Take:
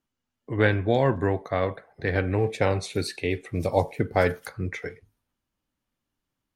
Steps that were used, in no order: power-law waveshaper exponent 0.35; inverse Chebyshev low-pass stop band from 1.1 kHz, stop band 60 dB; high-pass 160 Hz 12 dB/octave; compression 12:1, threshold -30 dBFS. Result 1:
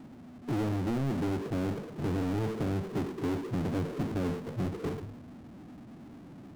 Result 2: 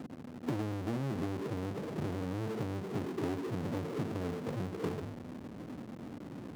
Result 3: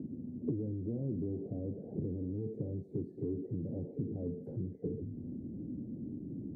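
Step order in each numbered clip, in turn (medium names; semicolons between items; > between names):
inverse Chebyshev low-pass > compression > high-pass > power-law waveshaper; inverse Chebyshev low-pass > power-law waveshaper > compression > high-pass; power-law waveshaper > inverse Chebyshev low-pass > compression > high-pass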